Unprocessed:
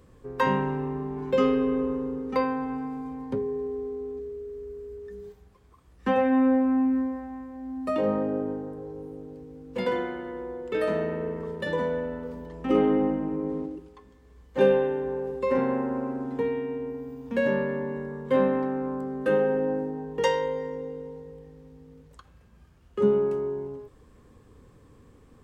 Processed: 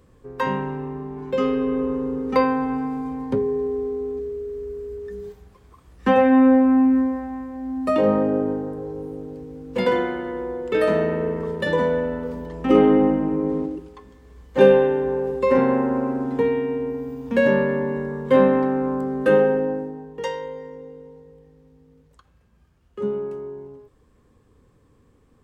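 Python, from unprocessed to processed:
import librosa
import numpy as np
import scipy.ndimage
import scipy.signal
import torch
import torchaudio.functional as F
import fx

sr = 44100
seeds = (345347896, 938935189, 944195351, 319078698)

y = fx.gain(x, sr, db=fx.line((1.36, 0.0), (2.32, 7.0), (19.39, 7.0), (20.15, -4.0)))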